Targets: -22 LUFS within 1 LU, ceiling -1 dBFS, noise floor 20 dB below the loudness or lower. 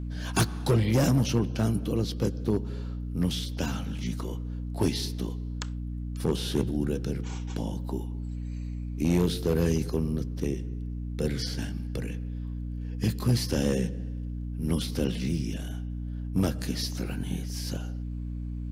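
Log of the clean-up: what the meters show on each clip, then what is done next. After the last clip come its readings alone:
clipped 0.5%; flat tops at -17.0 dBFS; hum 60 Hz; harmonics up to 300 Hz; hum level -31 dBFS; loudness -30.0 LUFS; peak -17.0 dBFS; loudness target -22.0 LUFS
-> clip repair -17 dBFS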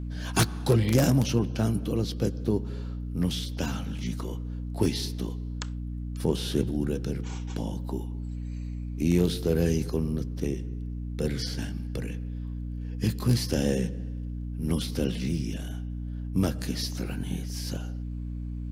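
clipped 0.0%; hum 60 Hz; harmonics up to 300 Hz; hum level -31 dBFS
-> notches 60/120/180/240/300 Hz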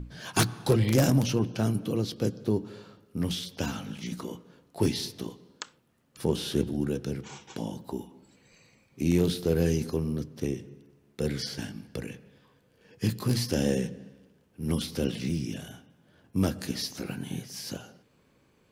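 hum none; loudness -30.0 LUFS; peak -7.5 dBFS; loudness target -22.0 LUFS
-> gain +8 dB; limiter -1 dBFS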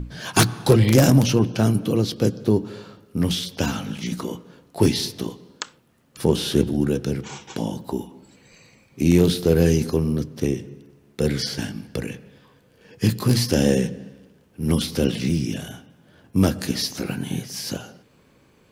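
loudness -22.0 LUFS; peak -1.0 dBFS; noise floor -57 dBFS

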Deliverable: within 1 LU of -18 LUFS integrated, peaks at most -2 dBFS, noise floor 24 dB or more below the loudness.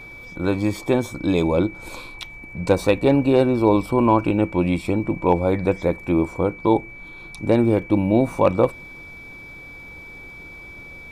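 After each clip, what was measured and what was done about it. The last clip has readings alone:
ticks 36/s; steady tone 2300 Hz; tone level -38 dBFS; loudness -20.5 LUFS; peak -5.0 dBFS; loudness target -18.0 LUFS
-> de-click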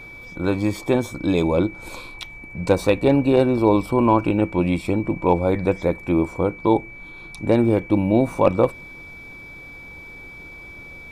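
ticks 0.36/s; steady tone 2300 Hz; tone level -38 dBFS
-> notch 2300 Hz, Q 30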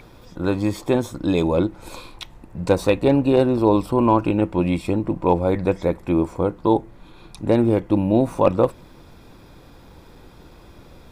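steady tone none; loudness -20.5 LUFS; peak -1.5 dBFS; loudness target -18.0 LUFS
-> gain +2.5 dB; limiter -2 dBFS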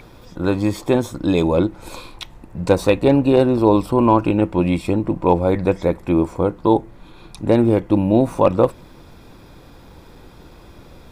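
loudness -18.0 LUFS; peak -2.0 dBFS; noise floor -44 dBFS

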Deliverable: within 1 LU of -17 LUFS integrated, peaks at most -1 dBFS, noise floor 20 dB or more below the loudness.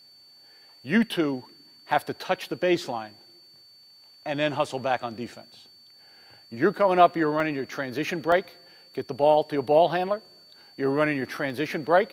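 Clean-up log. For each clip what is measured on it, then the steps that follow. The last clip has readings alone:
dropouts 4; longest dropout 1.6 ms; steady tone 4500 Hz; tone level -51 dBFS; loudness -25.5 LUFS; peak -5.0 dBFS; loudness target -17.0 LUFS
-> interpolate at 4.73/7.4/8.32/11.5, 1.6 ms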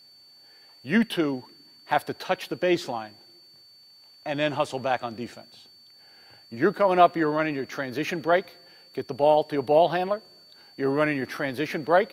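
dropouts 0; steady tone 4500 Hz; tone level -51 dBFS
-> notch 4500 Hz, Q 30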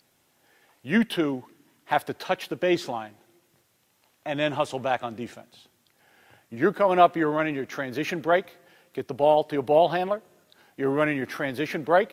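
steady tone none; loudness -25.5 LUFS; peak -4.5 dBFS; loudness target -17.0 LUFS
-> gain +8.5 dB; limiter -1 dBFS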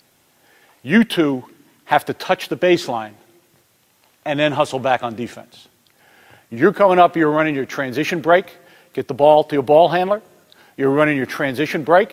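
loudness -17.0 LUFS; peak -1.0 dBFS; noise floor -59 dBFS

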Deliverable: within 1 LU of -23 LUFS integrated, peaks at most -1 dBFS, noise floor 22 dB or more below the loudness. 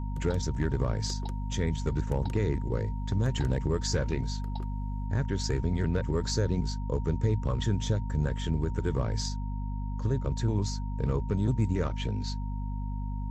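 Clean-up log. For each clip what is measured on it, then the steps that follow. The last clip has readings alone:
hum 50 Hz; harmonics up to 250 Hz; hum level -30 dBFS; steady tone 930 Hz; tone level -47 dBFS; loudness -31.0 LUFS; peak -16.0 dBFS; loudness target -23.0 LUFS
-> de-hum 50 Hz, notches 5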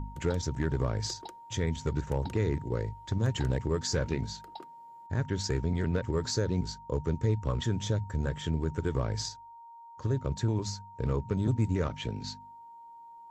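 hum none; steady tone 930 Hz; tone level -47 dBFS
-> notch 930 Hz, Q 30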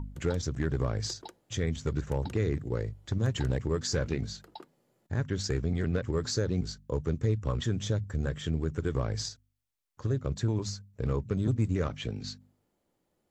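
steady tone none; loudness -32.0 LUFS; peak -16.5 dBFS; loudness target -23.0 LUFS
-> gain +9 dB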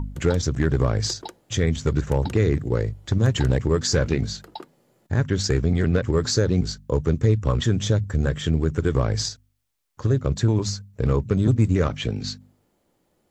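loudness -23.0 LUFS; peak -7.5 dBFS; noise floor -69 dBFS

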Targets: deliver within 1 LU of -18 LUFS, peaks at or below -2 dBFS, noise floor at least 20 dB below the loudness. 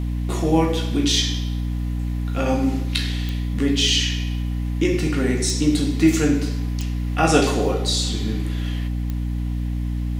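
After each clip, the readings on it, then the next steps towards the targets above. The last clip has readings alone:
clicks 4; hum 60 Hz; harmonics up to 300 Hz; hum level -21 dBFS; loudness -21.5 LUFS; peak -3.0 dBFS; loudness target -18.0 LUFS
-> de-click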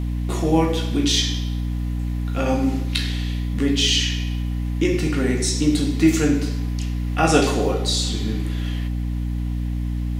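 clicks 0; hum 60 Hz; harmonics up to 300 Hz; hum level -21 dBFS
-> notches 60/120/180/240/300 Hz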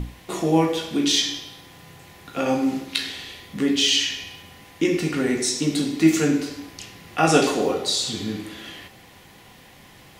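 hum none; loudness -22.0 LUFS; peak -3.5 dBFS; loudness target -18.0 LUFS
-> gain +4 dB; limiter -2 dBFS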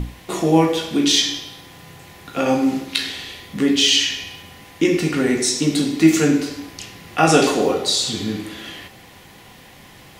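loudness -18.5 LUFS; peak -2.0 dBFS; noise floor -45 dBFS

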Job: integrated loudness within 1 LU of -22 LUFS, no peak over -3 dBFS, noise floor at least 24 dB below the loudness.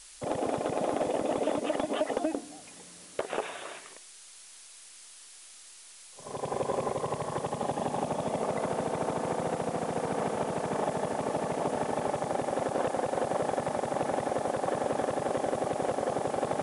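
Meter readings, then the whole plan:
noise floor -51 dBFS; noise floor target -56 dBFS; loudness -31.5 LUFS; peak -18.5 dBFS; loudness target -22.0 LUFS
-> noise print and reduce 6 dB; gain +9.5 dB

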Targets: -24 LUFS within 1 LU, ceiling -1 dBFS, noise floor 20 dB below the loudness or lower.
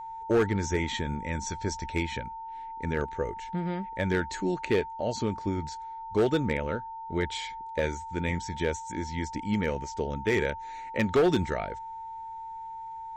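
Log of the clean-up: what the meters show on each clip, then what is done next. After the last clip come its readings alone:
clipped 0.7%; flat tops at -18.0 dBFS; steady tone 900 Hz; tone level -37 dBFS; loudness -30.5 LUFS; peak -18.0 dBFS; loudness target -24.0 LUFS
-> clip repair -18 dBFS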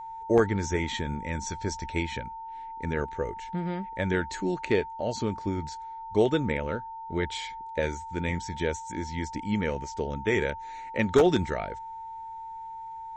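clipped 0.0%; steady tone 900 Hz; tone level -37 dBFS
-> notch 900 Hz, Q 30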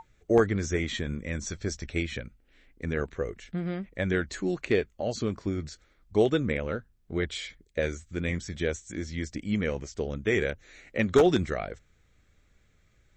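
steady tone none; loudness -30.0 LUFS; peak -9.0 dBFS; loudness target -24.0 LUFS
-> gain +6 dB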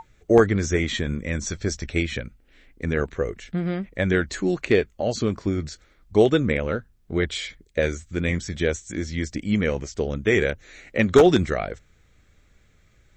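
loudness -24.0 LUFS; peak -3.0 dBFS; noise floor -59 dBFS

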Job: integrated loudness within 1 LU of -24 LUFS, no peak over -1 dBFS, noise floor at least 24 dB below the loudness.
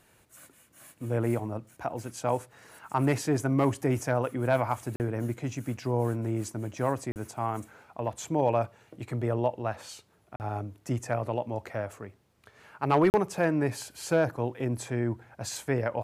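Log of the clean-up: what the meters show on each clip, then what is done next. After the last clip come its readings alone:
dropouts 4; longest dropout 39 ms; loudness -30.0 LUFS; peak -14.0 dBFS; loudness target -24.0 LUFS
-> interpolate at 4.96/7.12/10.36/13.1, 39 ms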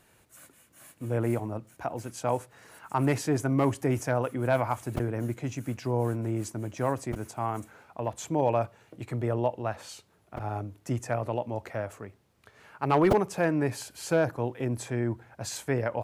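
dropouts 0; loudness -30.0 LUFS; peak -9.0 dBFS; loudness target -24.0 LUFS
-> gain +6 dB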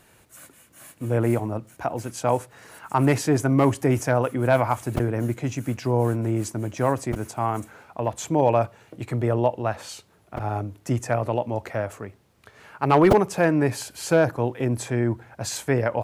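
loudness -24.0 LUFS; peak -3.0 dBFS; noise floor -58 dBFS

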